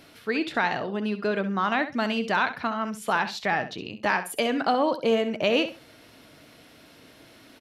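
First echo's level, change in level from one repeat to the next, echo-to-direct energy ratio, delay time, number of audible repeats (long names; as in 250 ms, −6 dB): −11.5 dB, −14.5 dB, −11.5 dB, 66 ms, 2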